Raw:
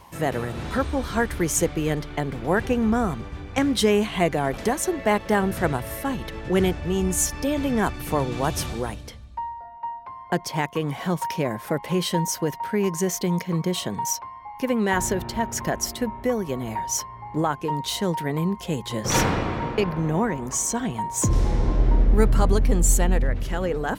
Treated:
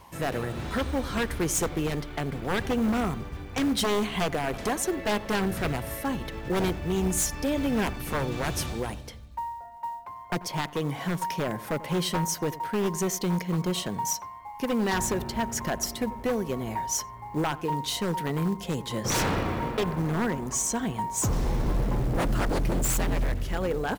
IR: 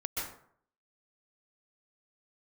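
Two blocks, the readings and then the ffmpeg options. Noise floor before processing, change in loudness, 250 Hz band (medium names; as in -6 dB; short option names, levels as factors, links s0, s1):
-41 dBFS, -4.0 dB, -4.0 dB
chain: -filter_complex "[0:a]aeval=exprs='0.133*(abs(mod(val(0)/0.133+3,4)-2)-1)':c=same,asplit=2[s0][s1];[s1]adelay=90,lowpass=f=1000:p=1,volume=0.168,asplit=2[s2][s3];[s3]adelay=90,lowpass=f=1000:p=1,volume=0.42,asplit=2[s4][s5];[s5]adelay=90,lowpass=f=1000:p=1,volume=0.42,asplit=2[s6][s7];[s7]adelay=90,lowpass=f=1000:p=1,volume=0.42[s8];[s0][s2][s4][s6][s8]amix=inputs=5:normalize=0,acrusher=bits=7:mode=log:mix=0:aa=0.000001,volume=0.75"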